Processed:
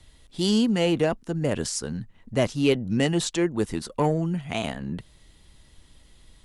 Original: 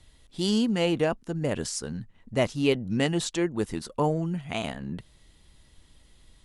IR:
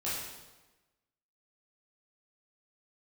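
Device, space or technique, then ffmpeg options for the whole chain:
one-band saturation: -filter_complex "[0:a]acrossover=split=400|3800[s0][s1][s2];[s1]asoftclip=type=tanh:threshold=0.0944[s3];[s0][s3][s2]amix=inputs=3:normalize=0,volume=1.41"

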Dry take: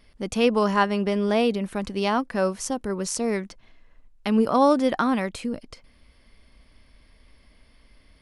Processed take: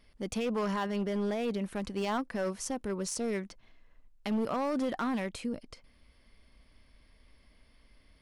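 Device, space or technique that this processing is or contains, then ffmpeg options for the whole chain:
limiter into clipper: -af "alimiter=limit=0.168:level=0:latency=1:release=20,asoftclip=type=hard:threshold=0.0944,volume=0.501"

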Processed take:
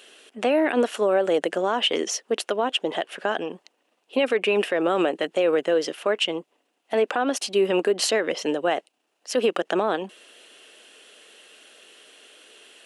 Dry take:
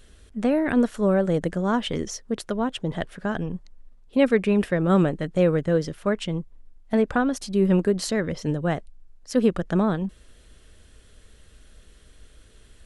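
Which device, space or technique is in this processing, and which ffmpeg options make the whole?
laptop speaker: -af "highpass=f=330:w=0.5412,highpass=f=330:w=1.3066,equalizer=f=750:t=o:w=0.45:g=4.5,equalizer=f=2800:t=o:w=0.43:g=11,alimiter=limit=0.119:level=0:latency=1:release=72,volume=2"

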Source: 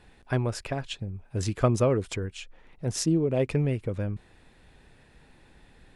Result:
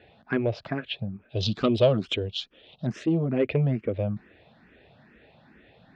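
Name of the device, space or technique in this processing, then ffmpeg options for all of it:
barber-pole phaser into a guitar amplifier: -filter_complex "[0:a]asplit=2[s0][s1];[s1]afreqshift=2.3[s2];[s0][s2]amix=inputs=2:normalize=1,asoftclip=type=tanh:threshold=0.106,highpass=110,equalizer=f=220:t=q:w=4:g=4,equalizer=f=640:t=q:w=4:g=7,equalizer=f=960:t=q:w=4:g=-5,lowpass=f=3700:w=0.5412,lowpass=f=3700:w=1.3066,asettb=1/sr,asplit=3[s3][s4][s5];[s3]atrim=end=1.294[s6];[s4]atrim=start=1.29:end=2.87,asetpts=PTS-STARTPTS,afade=t=in:d=0.004:c=qsin,afade=t=out:st=1.576:d=0.004:c=qsin,highshelf=f=2600:t=q:w=3:g=9.5[s7];[s5]atrim=start=2.866[s8];[s6][s7]acrossfade=d=0.004:c1=hsin:c2=qsin[s9];[s9][s8]acrossfade=d=0.004:c1=qsin:c2=hsin,volume=1.88"

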